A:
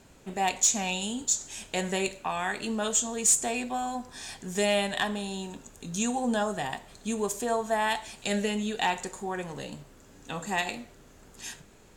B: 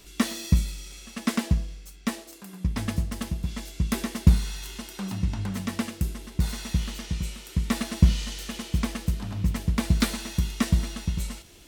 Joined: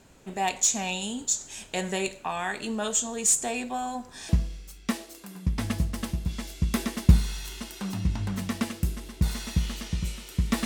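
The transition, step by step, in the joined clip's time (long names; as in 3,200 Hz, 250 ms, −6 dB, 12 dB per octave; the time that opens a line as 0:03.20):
A
0:04.29: continue with B from 0:01.47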